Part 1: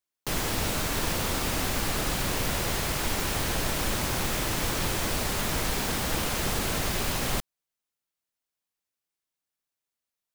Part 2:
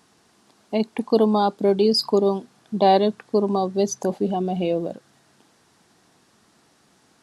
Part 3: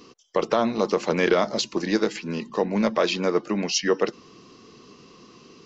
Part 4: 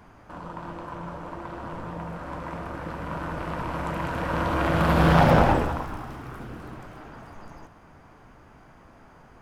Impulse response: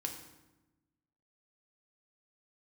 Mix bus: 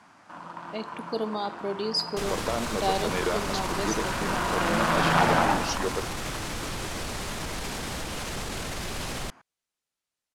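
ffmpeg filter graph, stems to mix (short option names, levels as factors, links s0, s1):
-filter_complex "[0:a]alimiter=level_in=1.33:limit=0.0631:level=0:latency=1,volume=0.75,adelay=1900,volume=1.41[s0];[1:a]tiltshelf=f=970:g=-5,volume=0.224,asplit=2[s1][s2];[s2]volume=0.596[s3];[2:a]adelay=1950,volume=0.355[s4];[3:a]highpass=260,equalizer=f=440:w=1.5:g=-11.5,volume=1.12[s5];[4:a]atrim=start_sample=2205[s6];[s3][s6]afir=irnorm=-1:irlink=0[s7];[s0][s1][s4][s5][s7]amix=inputs=5:normalize=0,lowpass=9700"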